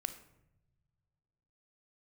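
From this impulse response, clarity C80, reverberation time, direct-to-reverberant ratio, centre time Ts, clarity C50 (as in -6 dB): 14.5 dB, no single decay rate, 9.0 dB, 9 ms, 11.5 dB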